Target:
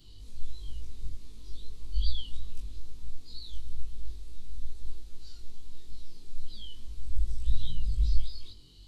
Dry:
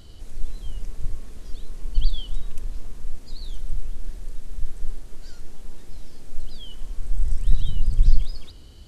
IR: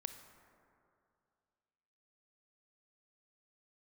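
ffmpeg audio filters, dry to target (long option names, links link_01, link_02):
-af "afftfilt=real='re':imag='-im':win_size=2048:overlap=0.75,equalizer=frequency=630:width_type=o:width=0.67:gain=-10,equalizer=frequency=1600:width_type=o:width=0.67:gain=-8,equalizer=frequency=4000:width_type=o:width=0.67:gain=10,flanger=delay=16:depth=4.6:speed=2.3,volume=-1.5dB"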